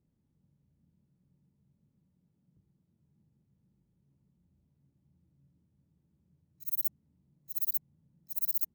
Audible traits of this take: noise floor -76 dBFS; spectral tilt +1.0 dB/octave

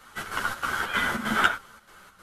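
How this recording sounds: chopped level 3.2 Hz, depth 60%, duty 70%; a shimmering, thickened sound

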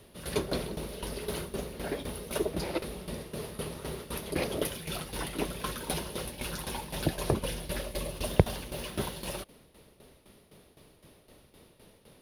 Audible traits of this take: tremolo saw down 3.9 Hz, depth 75%

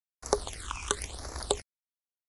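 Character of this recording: a quantiser's noise floor 8-bit, dither none; phasing stages 8, 0.95 Hz, lowest notch 530–3100 Hz; MP3

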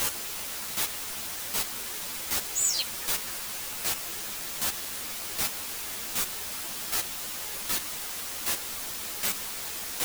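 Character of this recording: a quantiser's noise floor 6-bit, dither triangular; chopped level 1.3 Hz, depth 65%, duty 10%; a shimmering, thickened sound

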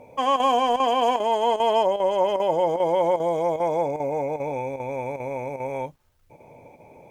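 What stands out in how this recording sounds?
chopped level 2.5 Hz, depth 60%, duty 90%; a quantiser's noise floor 12-bit, dither none; Opus

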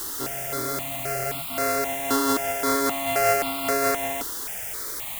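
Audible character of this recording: a buzz of ramps at a fixed pitch in blocks of 64 samples; chopped level 1.9 Hz, depth 60%, duty 50%; a quantiser's noise floor 6-bit, dither triangular; notches that jump at a steady rate 3.8 Hz 650–1700 Hz

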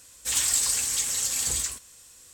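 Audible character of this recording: noise floor -52 dBFS; spectral tilt 0.0 dB/octave

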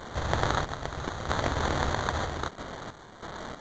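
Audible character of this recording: a quantiser's noise floor 8-bit, dither triangular; random-step tremolo 3.1 Hz, depth 70%; aliases and images of a low sample rate 2.6 kHz, jitter 0%; G.722

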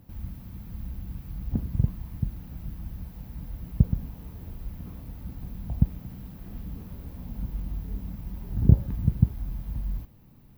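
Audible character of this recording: noise floor -52 dBFS; spectral tilt -13.5 dB/octave

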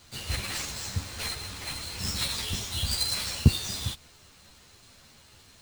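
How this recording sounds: aliases and images of a low sample rate 13 kHz, jitter 20%; a shimmering, thickened sound

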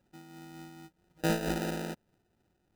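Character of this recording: aliases and images of a low sample rate 1.1 kHz, jitter 0%; random flutter of the level

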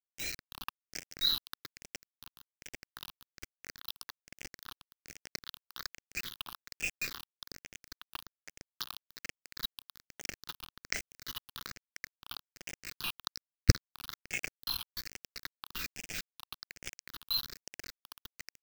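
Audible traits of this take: tremolo saw up 2.9 Hz, depth 80%; a quantiser's noise floor 6-bit, dither none; phasing stages 6, 1.2 Hz, lowest notch 530–1100 Hz

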